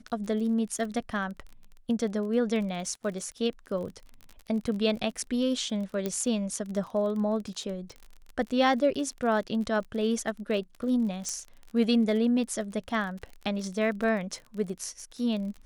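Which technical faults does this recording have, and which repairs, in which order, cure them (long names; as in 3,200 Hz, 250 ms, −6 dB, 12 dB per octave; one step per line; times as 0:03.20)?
surface crackle 30 per second −36 dBFS
0:06.06: click −16 dBFS
0:11.29: click −19 dBFS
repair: click removal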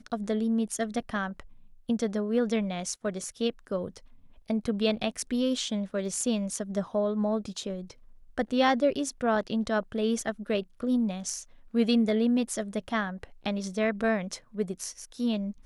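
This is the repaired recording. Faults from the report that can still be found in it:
0:06.06: click
0:11.29: click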